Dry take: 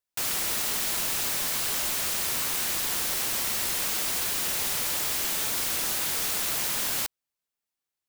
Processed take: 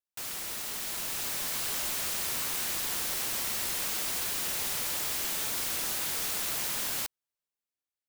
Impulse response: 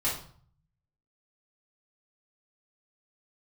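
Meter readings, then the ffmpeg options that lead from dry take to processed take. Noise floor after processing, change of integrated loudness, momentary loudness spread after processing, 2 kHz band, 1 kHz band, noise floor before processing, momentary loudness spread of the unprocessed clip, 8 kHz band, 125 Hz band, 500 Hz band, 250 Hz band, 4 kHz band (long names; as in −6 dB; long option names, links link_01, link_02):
below −85 dBFS, −4.5 dB, 4 LU, −4.5 dB, −4.5 dB, below −85 dBFS, 0 LU, −4.5 dB, −4.5 dB, −4.5 dB, −4.5 dB, −4.5 dB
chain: -af "dynaudnorm=framelen=320:gausssize=7:maxgain=5dB,volume=-9dB"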